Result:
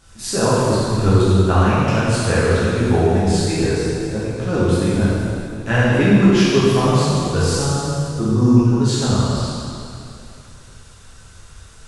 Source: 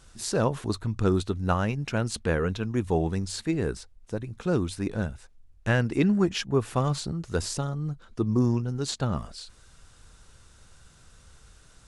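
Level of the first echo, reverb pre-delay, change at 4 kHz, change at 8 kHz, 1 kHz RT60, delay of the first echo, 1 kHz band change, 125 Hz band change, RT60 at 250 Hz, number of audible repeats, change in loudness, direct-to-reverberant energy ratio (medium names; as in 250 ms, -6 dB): no echo, 5 ms, +11.0 dB, +11.0 dB, 2.6 s, no echo, +11.5 dB, +11.5 dB, 2.6 s, no echo, +11.0 dB, -10.0 dB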